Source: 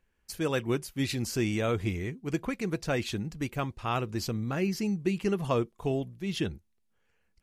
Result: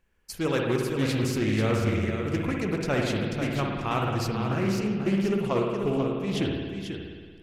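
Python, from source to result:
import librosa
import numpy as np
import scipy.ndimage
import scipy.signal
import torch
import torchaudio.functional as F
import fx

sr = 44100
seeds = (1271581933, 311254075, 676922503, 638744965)

y = fx.rider(x, sr, range_db=4, speed_s=2.0)
y = y + 10.0 ** (-7.0 / 20.0) * np.pad(y, (int(490 * sr / 1000.0), 0))[:len(y)]
y = fx.rev_spring(y, sr, rt60_s=1.7, pass_ms=(56,), chirp_ms=45, drr_db=0.5)
y = fx.doppler_dist(y, sr, depth_ms=0.28)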